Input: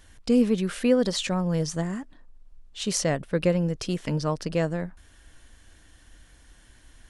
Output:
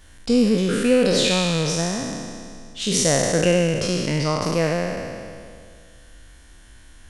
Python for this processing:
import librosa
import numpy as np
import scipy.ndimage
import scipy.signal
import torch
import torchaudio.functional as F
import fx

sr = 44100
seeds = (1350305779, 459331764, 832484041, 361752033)

y = fx.spec_trails(x, sr, decay_s=2.17)
y = y * librosa.db_to_amplitude(2.0)